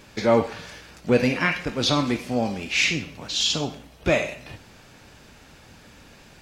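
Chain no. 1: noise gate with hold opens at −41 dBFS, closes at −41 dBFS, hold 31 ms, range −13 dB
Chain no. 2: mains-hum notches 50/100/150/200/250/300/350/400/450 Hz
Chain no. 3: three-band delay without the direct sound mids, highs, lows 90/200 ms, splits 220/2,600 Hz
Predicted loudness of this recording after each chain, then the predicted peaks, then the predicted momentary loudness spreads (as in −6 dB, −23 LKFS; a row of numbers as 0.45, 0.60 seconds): −23.5, −23.5, −25.0 LKFS; −6.0, −6.5, −6.5 dBFS; 12, 12, 12 LU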